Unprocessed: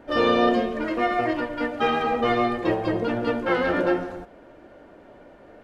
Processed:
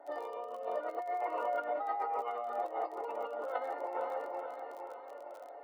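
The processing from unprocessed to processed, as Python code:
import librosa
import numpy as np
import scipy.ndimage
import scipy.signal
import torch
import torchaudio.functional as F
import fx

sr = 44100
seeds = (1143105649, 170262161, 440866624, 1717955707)

p1 = fx.spec_ripple(x, sr, per_octave=0.8, drift_hz=1.1, depth_db=11)
p2 = scipy.signal.savgol_filter(p1, 65, 4, mode='constant')
p3 = p2 + 0.55 * np.pad(p2, (int(7.1 * sr / 1000.0), 0))[:len(p2)]
p4 = p3 + fx.echo_feedback(p3, sr, ms=462, feedback_pct=56, wet_db=-11.5, dry=0)
p5 = fx.over_compress(p4, sr, threshold_db=-27.0, ratio=-1.0)
p6 = fx.dmg_crackle(p5, sr, seeds[0], per_s=36.0, level_db=-39.0)
p7 = scipy.signal.sosfilt(scipy.signal.butter(4, 560.0, 'highpass', fs=sr, output='sos'), p6)
y = F.gain(torch.from_numpy(p7), -5.5).numpy()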